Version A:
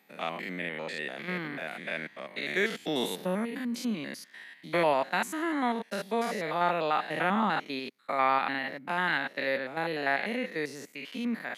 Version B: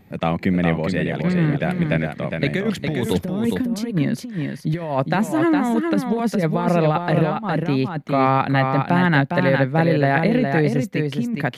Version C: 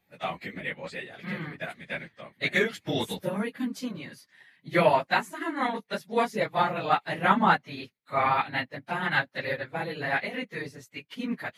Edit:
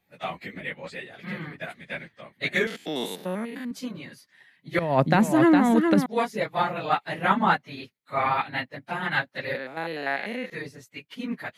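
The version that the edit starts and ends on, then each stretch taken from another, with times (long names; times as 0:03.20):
C
0:02.67–0:03.71: punch in from A
0:04.79–0:06.06: punch in from B
0:09.55–0:10.50: punch in from A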